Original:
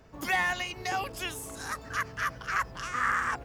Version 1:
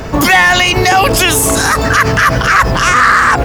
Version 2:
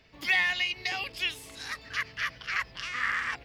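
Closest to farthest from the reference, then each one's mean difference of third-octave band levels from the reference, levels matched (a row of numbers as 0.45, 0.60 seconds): 1, 2; 5.0, 6.5 decibels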